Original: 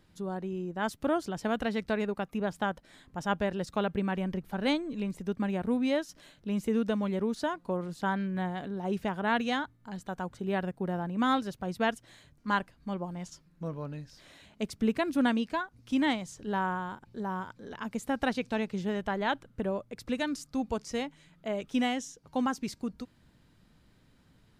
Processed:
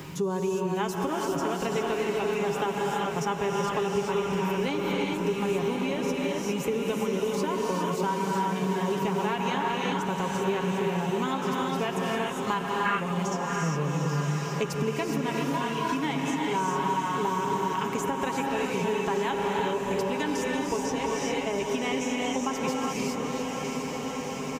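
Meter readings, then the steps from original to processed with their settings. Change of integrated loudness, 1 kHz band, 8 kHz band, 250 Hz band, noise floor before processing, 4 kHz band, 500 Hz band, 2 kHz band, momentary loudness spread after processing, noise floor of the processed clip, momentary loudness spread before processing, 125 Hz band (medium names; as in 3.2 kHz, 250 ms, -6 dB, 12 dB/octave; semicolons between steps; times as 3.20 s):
+4.0 dB, +6.5 dB, +11.0 dB, +1.5 dB, -64 dBFS, +5.5 dB, +6.5 dB, +3.5 dB, 2 LU, -33 dBFS, 11 LU, +7.0 dB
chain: high-pass 52 Hz; treble shelf 9.1 kHz +8.5 dB; comb 7.3 ms, depth 51%; gated-style reverb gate 430 ms rising, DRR -0.5 dB; compression, threshold -31 dBFS, peak gain reduction 12.5 dB; rippled EQ curve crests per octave 0.75, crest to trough 8 dB; time-frequency box 12.86–13.13 s, 1.1–2.8 kHz +11 dB; echo that smears into a reverb 716 ms, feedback 68%, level -8 dB; three bands compressed up and down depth 70%; trim +4.5 dB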